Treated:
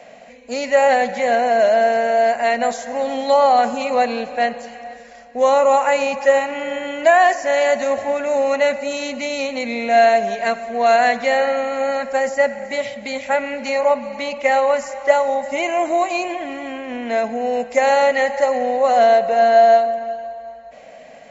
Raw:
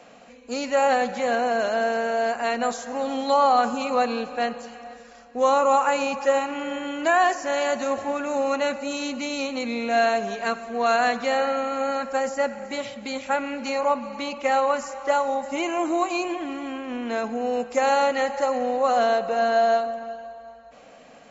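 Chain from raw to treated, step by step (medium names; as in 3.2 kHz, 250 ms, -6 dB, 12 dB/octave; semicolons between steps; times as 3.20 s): graphic EQ with 31 bands 315 Hz -6 dB, 630 Hz +10 dB, 1.25 kHz -8 dB, 2 kHz +9 dB; trim +3 dB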